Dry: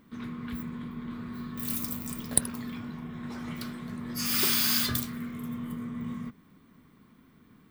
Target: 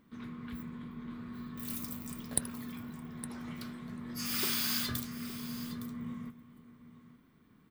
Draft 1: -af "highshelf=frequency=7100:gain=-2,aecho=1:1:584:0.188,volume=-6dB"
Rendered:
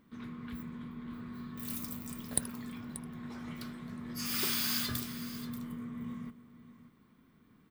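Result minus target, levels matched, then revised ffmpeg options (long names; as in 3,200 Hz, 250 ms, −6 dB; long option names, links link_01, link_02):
echo 279 ms early
-af "highshelf=frequency=7100:gain=-2,aecho=1:1:863:0.188,volume=-6dB"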